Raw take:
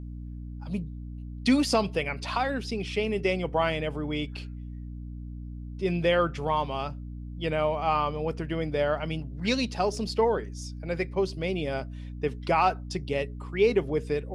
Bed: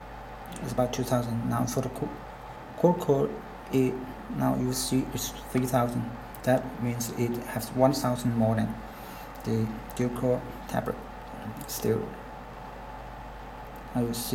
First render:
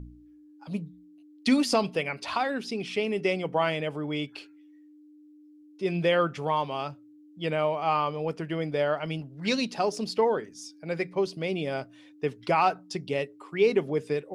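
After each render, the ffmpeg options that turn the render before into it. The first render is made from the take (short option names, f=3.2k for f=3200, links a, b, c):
-af "bandreject=f=60:t=h:w=4,bandreject=f=120:t=h:w=4,bandreject=f=180:t=h:w=4,bandreject=f=240:t=h:w=4"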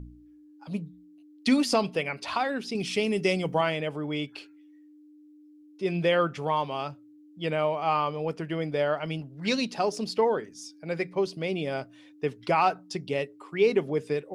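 -filter_complex "[0:a]asettb=1/sr,asplit=3[a][b][c];[a]atrim=end=2.754[d];[b]atrim=start=2.75:end=3.61,asetpts=PTS-STARTPTS,afade=t=in:d=0.004:c=qsin,afade=t=out:st=0.856:d=0.004:c=qsin,bass=f=250:g=6,treble=f=4k:g=11[e];[c]atrim=start=3.606[f];[d][e]acrossfade=d=0.004:c1=hsin:c2=qsin[g];[g][f]acrossfade=d=0.004:c1=qsin:c2=hsin"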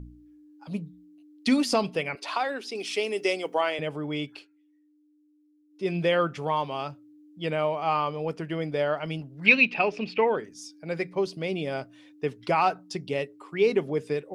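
-filter_complex "[0:a]asettb=1/sr,asplit=3[a][b][c];[a]atrim=end=2.154[d];[b]atrim=start=2.15:end=3.79,asetpts=PTS-STARTPTS,afade=t=in:d=0.004:c=qsin,afade=t=out:st=1.636:d=0.004:c=qsin,highpass=f=310:w=0.5412,highpass=f=310:w=1.3066[e];[c]atrim=start=3.786[f];[d][e]acrossfade=d=0.004:c1=hsin:c2=qsin[g];[g][f]acrossfade=d=0.004:c1=qsin:c2=hsin,asettb=1/sr,asplit=3[h][i][j];[h]atrim=end=9.464[k];[i]atrim=start=9.46:end=10.36,asetpts=PTS-STARTPTS,afade=t=in:d=0.004:c=qsin,afade=t=out:st=0.896:d=0.004:c=qsin,lowpass=f=2.5k:t=q:w=9.4[l];[j]atrim=start=10.356[m];[k][l]acrossfade=d=0.004:c1=hsin:c2=qsin[n];[n][m]acrossfade=d=0.004:c1=qsin:c2=hsin,asplit=3[o][p][q];[o]atrim=end=4.46,asetpts=PTS-STARTPTS,afade=t=out:st=4.32:d=0.14:silence=0.298538[r];[p]atrim=start=4.46:end=5.69,asetpts=PTS-STARTPTS,volume=-10.5dB[s];[q]atrim=start=5.69,asetpts=PTS-STARTPTS,afade=t=in:d=0.14:silence=0.298538[t];[r][s][t]concat=n=3:v=0:a=1"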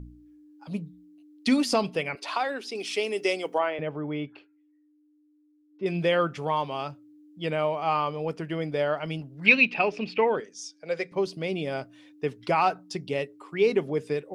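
-filter_complex "[0:a]asettb=1/sr,asplit=3[a][b][c];[a]atrim=end=3.584[d];[b]atrim=start=3.58:end=5.86,asetpts=PTS-STARTPTS,afade=t=in:d=0.004:c=qsin,afade=t=out:st=2.276:d=0.004:c=qsin,lowpass=2k[e];[c]atrim=start=5.856[f];[d][e]acrossfade=d=0.004:c1=hsin:c2=qsin[g];[g][f]acrossfade=d=0.004:c1=qsin:c2=hsin,asettb=1/sr,asplit=3[h][i][j];[h]atrim=end=10.404[k];[i]atrim=start=10.4:end=11.12,asetpts=PTS-STARTPTS,afade=t=in:d=0.004:c=qsin,afade=t=out:st=0.716:d=0.004:c=qsin,highpass=280,equalizer=f=310:t=q:w=4:g=-8,equalizer=f=490:t=q:w=4:g=6,equalizer=f=880:t=q:w=4:g=-4,equalizer=f=3.3k:t=q:w=4:g=4,equalizer=f=6k:t=q:w=4:g=6,lowpass=f=9.5k:w=0.5412,lowpass=f=9.5k:w=1.3066[l];[j]atrim=start=11.116[m];[k][l]acrossfade=d=0.004:c1=hsin:c2=qsin[n];[n][m]acrossfade=d=0.004:c1=qsin:c2=hsin"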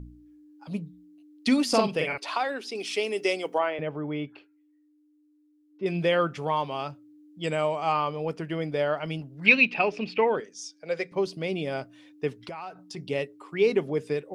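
-filter_complex "[0:a]asettb=1/sr,asplit=3[a][b][c];[a]atrim=end=1.694[d];[b]atrim=start=1.69:end=2.18,asetpts=PTS-STARTPTS,afade=t=in:d=0.004:c=qsin,afade=t=out:st=0.486:d=0.004:c=qsin,asplit=2[e][f];[f]adelay=45,volume=-2.5dB[g];[e][g]amix=inputs=2:normalize=0,atrim=end_sample=21609[h];[c]atrim=start=2.176[i];[d][h]acrossfade=d=0.004:c1=hsin:c2=qsin[j];[j][i]acrossfade=d=0.004:c1=qsin:c2=hsin,asettb=1/sr,asplit=3[k][l][m];[k]atrim=end=7.434[n];[l]atrim=start=7.43:end=7.92,asetpts=PTS-STARTPTS,afade=t=in:d=0.004:c=qsin,afade=t=out:st=0.486:d=0.004:c=qsin,lowpass=f=7.8k:t=q:w=12[o];[m]atrim=start=7.916[p];[n][o]acrossfade=d=0.004:c1=hsin:c2=qsin[q];[q][p]acrossfade=d=0.004:c1=qsin:c2=hsin,asplit=3[r][s][t];[r]afade=t=out:st=12.44:d=0.02[u];[s]acompressor=threshold=-37dB:ratio=4:attack=3.2:release=140:knee=1:detection=peak,afade=t=in:st=12.44:d=0.02,afade=t=out:st=12.96:d=0.02[v];[t]afade=t=in:st=12.96:d=0.02[w];[u][v][w]amix=inputs=3:normalize=0"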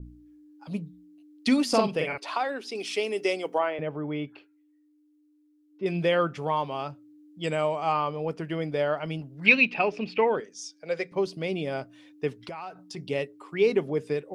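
-af "adynamicequalizer=threshold=0.0112:dfrequency=1700:dqfactor=0.7:tfrequency=1700:tqfactor=0.7:attack=5:release=100:ratio=0.375:range=2:mode=cutabove:tftype=highshelf"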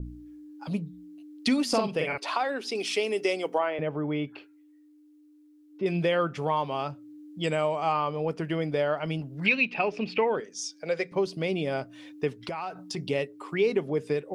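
-filter_complex "[0:a]asplit=2[a][b];[b]alimiter=limit=-15.5dB:level=0:latency=1:release=361,volume=2dB[c];[a][c]amix=inputs=2:normalize=0,acompressor=threshold=-35dB:ratio=1.5"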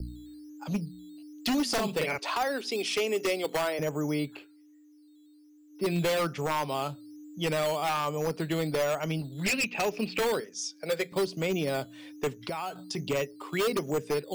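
-filter_complex "[0:a]acrossover=split=110|800[a][b][c];[b]acrusher=samples=9:mix=1:aa=0.000001:lfo=1:lforange=5.4:lforate=1.2[d];[a][d][c]amix=inputs=3:normalize=0,aeval=exprs='0.0841*(abs(mod(val(0)/0.0841+3,4)-2)-1)':c=same"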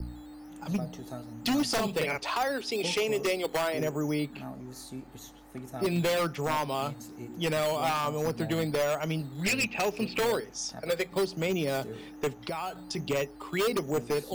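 -filter_complex "[1:a]volume=-15dB[a];[0:a][a]amix=inputs=2:normalize=0"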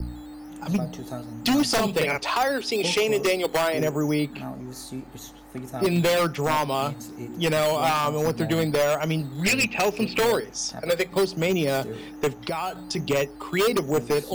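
-af "volume=6dB"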